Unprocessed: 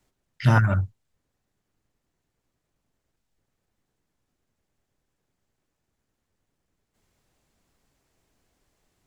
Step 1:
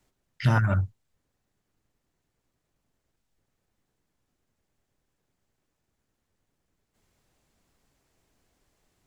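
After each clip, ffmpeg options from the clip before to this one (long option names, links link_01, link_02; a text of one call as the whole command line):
ffmpeg -i in.wav -af "acompressor=threshold=-19dB:ratio=2.5" out.wav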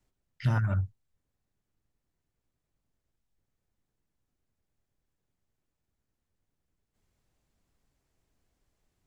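ffmpeg -i in.wav -af "lowshelf=frequency=140:gain=7.5,volume=-8.5dB" out.wav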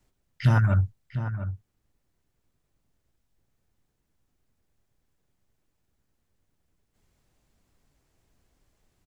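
ffmpeg -i in.wav -filter_complex "[0:a]asplit=2[link_01][link_02];[link_02]adelay=699.7,volume=-10dB,highshelf=frequency=4000:gain=-15.7[link_03];[link_01][link_03]amix=inputs=2:normalize=0,volume=6.5dB" out.wav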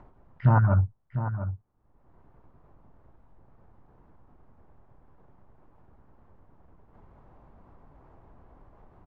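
ffmpeg -i in.wav -af "acompressor=mode=upward:threshold=-39dB:ratio=2.5,lowpass=frequency=1000:width_type=q:width=2.1" out.wav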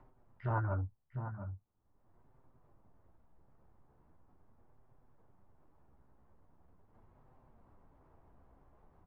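ffmpeg -i in.wav -filter_complex "[0:a]flanger=delay=7.7:depth=7.1:regen=-29:speed=0.41:shape=sinusoidal,acrossover=split=320[link_01][link_02];[link_01]asoftclip=type=tanh:threshold=-26.5dB[link_03];[link_03][link_02]amix=inputs=2:normalize=0,volume=-6dB" out.wav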